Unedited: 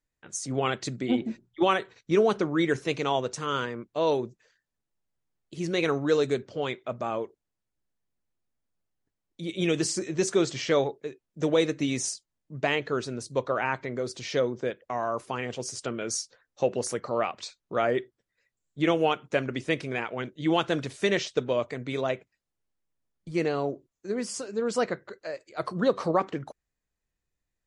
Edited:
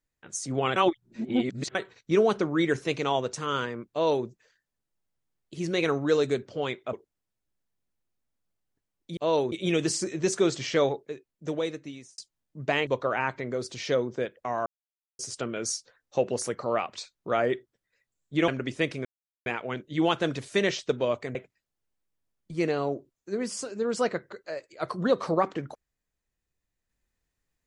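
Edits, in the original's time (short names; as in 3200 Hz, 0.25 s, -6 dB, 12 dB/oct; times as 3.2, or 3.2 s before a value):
0.76–1.75 reverse
3.91–4.26 copy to 9.47
6.93–7.23 cut
10.91–12.13 fade out linear
12.82–13.32 cut
15.11–15.64 mute
18.93–19.37 cut
19.94 insert silence 0.41 s
21.83–22.12 cut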